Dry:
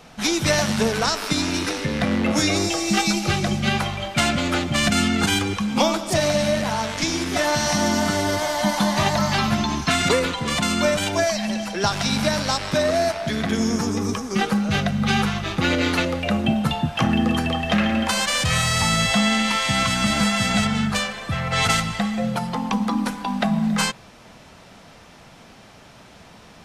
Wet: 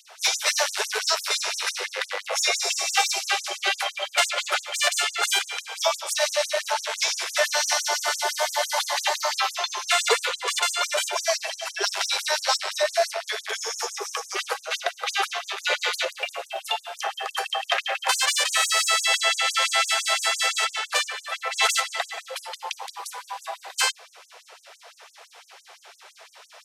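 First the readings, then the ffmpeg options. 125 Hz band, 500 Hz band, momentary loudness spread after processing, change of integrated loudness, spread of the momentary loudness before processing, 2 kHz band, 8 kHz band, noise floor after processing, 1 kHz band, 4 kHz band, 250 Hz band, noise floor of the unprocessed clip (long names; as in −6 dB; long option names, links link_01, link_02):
below −40 dB, −5.5 dB, 10 LU, −2.5 dB, 5 LU, −1.0 dB, +1.5 dB, −53 dBFS, −3.0 dB, 0.0 dB, below −30 dB, −47 dBFS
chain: -af "acontrast=77,afftfilt=real='re*gte(b*sr/1024,370*pow(6100/370,0.5+0.5*sin(2*PI*5.9*pts/sr)))':imag='im*gte(b*sr/1024,370*pow(6100/370,0.5+0.5*sin(2*PI*5.9*pts/sr)))':win_size=1024:overlap=0.75,volume=-4.5dB"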